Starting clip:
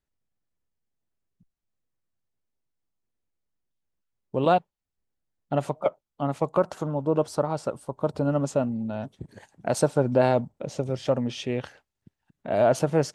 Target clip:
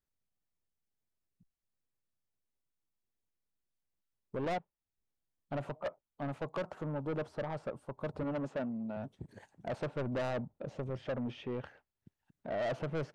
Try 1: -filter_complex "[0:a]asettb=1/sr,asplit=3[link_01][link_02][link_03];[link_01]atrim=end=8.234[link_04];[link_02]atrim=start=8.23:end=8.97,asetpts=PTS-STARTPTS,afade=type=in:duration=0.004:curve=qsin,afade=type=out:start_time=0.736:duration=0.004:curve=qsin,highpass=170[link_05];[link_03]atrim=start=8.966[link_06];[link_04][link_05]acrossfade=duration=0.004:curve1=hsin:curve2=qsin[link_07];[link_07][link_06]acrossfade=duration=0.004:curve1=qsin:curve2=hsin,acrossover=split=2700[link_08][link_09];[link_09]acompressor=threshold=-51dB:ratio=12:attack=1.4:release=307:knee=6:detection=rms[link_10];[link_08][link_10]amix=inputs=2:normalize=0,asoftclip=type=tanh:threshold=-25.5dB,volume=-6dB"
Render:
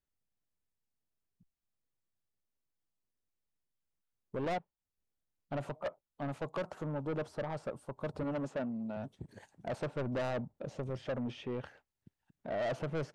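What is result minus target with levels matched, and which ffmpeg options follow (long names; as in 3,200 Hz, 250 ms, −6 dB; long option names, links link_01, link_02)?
downward compressor: peak gain reduction −7.5 dB
-filter_complex "[0:a]asettb=1/sr,asplit=3[link_01][link_02][link_03];[link_01]atrim=end=8.234[link_04];[link_02]atrim=start=8.23:end=8.97,asetpts=PTS-STARTPTS,afade=type=in:duration=0.004:curve=qsin,afade=type=out:start_time=0.736:duration=0.004:curve=qsin,highpass=170[link_05];[link_03]atrim=start=8.966[link_06];[link_04][link_05]acrossfade=duration=0.004:curve1=hsin:curve2=qsin[link_07];[link_07][link_06]acrossfade=duration=0.004:curve1=qsin:curve2=hsin,acrossover=split=2700[link_08][link_09];[link_09]acompressor=threshold=-59dB:ratio=12:attack=1.4:release=307:knee=6:detection=rms[link_10];[link_08][link_10]amix=inputs=2:normalize=0,asoftclip=type=tanh:threshold=-25.5dB,volume=-6dB"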